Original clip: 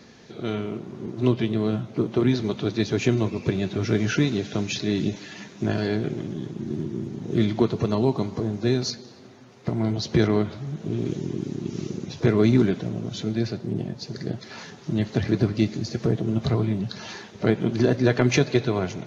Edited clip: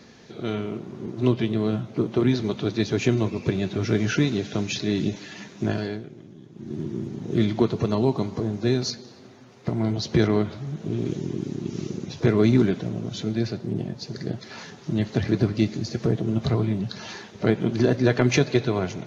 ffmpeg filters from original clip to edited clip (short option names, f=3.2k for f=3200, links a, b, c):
-filter_complex "[0:a]asplit=3[a][b][c];[a]atrim=end=6.06,asetpts=PTS-STARTPTS,afade=t=out:st=5.68:d=0.38:silence=0.199526[d];[b]atrim=start=6.06:end=6.5,asetpts=PTS-STARTPTS,volume=-14dB[e];[c]atrim=start=6.5,asetpts=PTS-STARTPTS,afade=t=in:d=0.38:silence=0.199526[f];[d][e][f]concat=n=3:v=0:a=1"